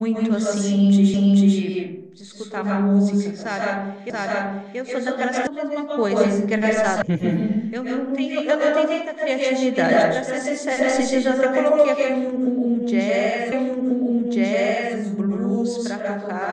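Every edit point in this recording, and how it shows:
0:01.14: the same again, the last 0.44 s
0:04.10: the same again, the last 0.68 s
0:05.47: cut off before it has died away
0:07.02: cut off before it has died away
0:13.52: the same again, the last 1.44 s

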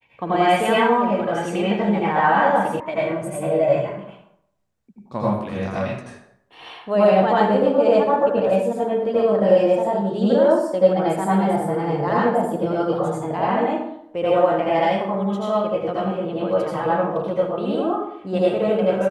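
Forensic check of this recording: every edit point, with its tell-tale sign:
0:02.80: cut off before it has died away

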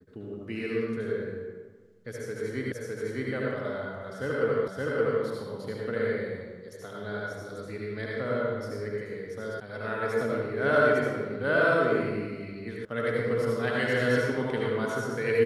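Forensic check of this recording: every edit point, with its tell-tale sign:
0:02.72: the same again, the last 0.61 s
0:04.68: the same again, the last 0.57 s
0:09.60: cut off before it has died away
0:12.85: cut off before it has died away

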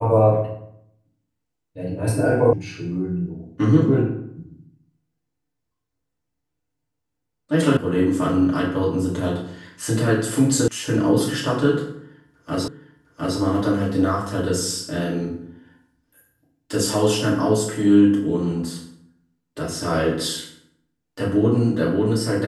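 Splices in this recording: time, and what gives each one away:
0:02.53: cut off before it has died away
0:07.77: cut off before it has died away
0:10.68: cut off before it has died away
0:12.68: the same again, the last 0.71 s

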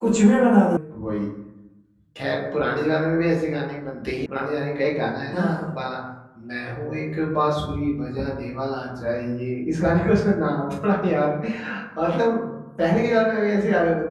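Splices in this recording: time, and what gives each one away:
0:00.77: cut off before it has died away
0:04.26: cut off before it has died away

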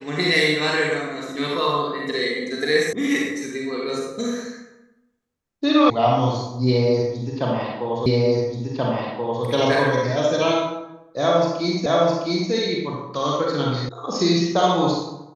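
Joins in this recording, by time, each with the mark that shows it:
0:02.93: cut off before it has died away
0:05.90: cut off before it has died away
0:08.06: the same again, the last 1.38 s
0:11.86: the same again, the last 0.66 s
0:13.89: cut off before it has died away

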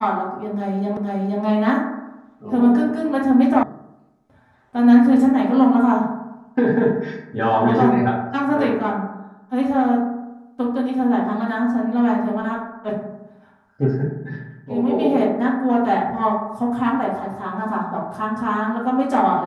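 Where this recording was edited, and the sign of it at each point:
0:00.97: the same again, the last 0.47 s
0:03.63: cut off before it has died away

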